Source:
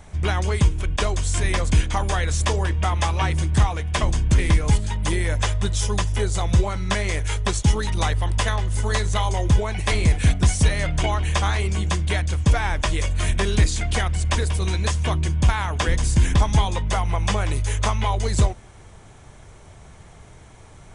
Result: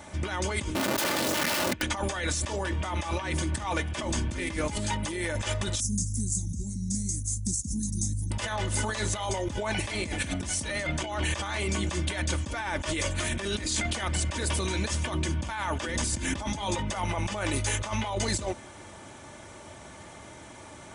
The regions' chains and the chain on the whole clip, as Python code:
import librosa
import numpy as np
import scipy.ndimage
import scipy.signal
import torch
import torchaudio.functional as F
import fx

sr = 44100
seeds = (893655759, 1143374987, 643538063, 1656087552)

y = fx.chain(x, sr, fx.lowpass(hz=2400.0, slope=12),
    fx.over_compress(threshold_db=-22.0, ratio=-0.5),
    fx.overflow_wrap(gain_db=25.0), at=(0.75, 1.82))
y = fx.chain(y, sr, fx.ellip_bandstop(low_hz=220.0, high_hz=6500.0, order=3, stop_db=40),
    fx.high_shelf(hz=9100.0, db=3.0), at=(5.8, 8.31))
y = scipy.signal.sosfilt(scipy.signal.butter(2, 140.0, 'highpass', fs=sr, output='sos'), y)
y = y + 0.51 * np.pad(y, (int(3.4 * sr / 1000.0), 0))[:len(y)]
y = fx.over_compress(y, sr, threshold_db=-30.0, ratio=-1.0)